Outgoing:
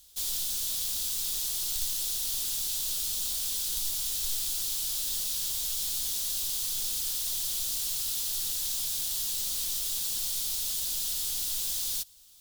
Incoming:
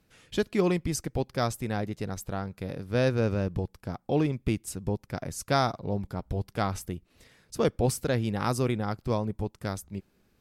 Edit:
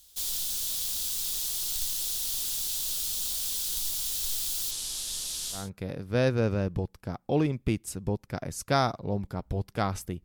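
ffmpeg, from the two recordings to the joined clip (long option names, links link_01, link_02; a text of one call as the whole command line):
ffmpeg -i cue0.wav -i cue1.wav -filter_complex "[0:a]asplit=3[link_01][link_02][link_03];[link_01]afade=type=out:start_time=4.7:duration=0.02[link_04];[link_02]lowpass=frequency=11000:width=0.5412,lowpass=frequency=11000:width=1.3066,afade=type=in:start_time=4.7:duration=0.02,afade=type=out:start_time=5.7:duration=0.02[link_05];[link_03]afade=type=in:start_time=5.7:duration=0.02[link_06];[link_04][link_05][link_06]amix=inputs=3:normalize=0,apad=whole_dur=10.24,atrim=end=10.24,atrim=end=5.7,asetpts=PTS-STARTPTS[link_07];[1:a]atrim=start=2.3:end=7.04,asetpts=PTS-STARTPTS[link_08];[link_07][link_08]acrossfade=duration=0.2:curve1=tri:curve2=tri" out.wav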